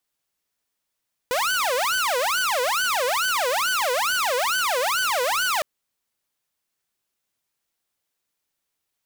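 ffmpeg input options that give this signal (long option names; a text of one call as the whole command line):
ffmpeg -f lavfi -i "aevalsrc='0.126*(2*mod((1003*t-517/(2*PI*2.3)*sin(2*PI*2.3*t)),1)-1)':duration=4.31:sample_rate=44100" out.wav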